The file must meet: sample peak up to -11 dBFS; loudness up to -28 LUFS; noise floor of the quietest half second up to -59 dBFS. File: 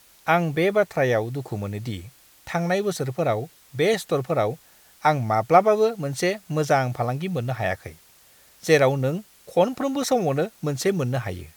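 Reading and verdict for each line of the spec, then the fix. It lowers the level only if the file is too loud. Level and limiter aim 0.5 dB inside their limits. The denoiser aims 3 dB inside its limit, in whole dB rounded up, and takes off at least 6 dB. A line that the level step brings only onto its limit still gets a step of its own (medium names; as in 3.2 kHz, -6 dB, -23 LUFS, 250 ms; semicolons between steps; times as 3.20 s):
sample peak -3.5 dBFS: fail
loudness -23.5 LUFS: fail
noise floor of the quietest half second -54 dBFS: fail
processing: noise reduction 6 dB, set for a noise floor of -54 dBFS; trim -5 dB; peak limiter -11.5 dBFS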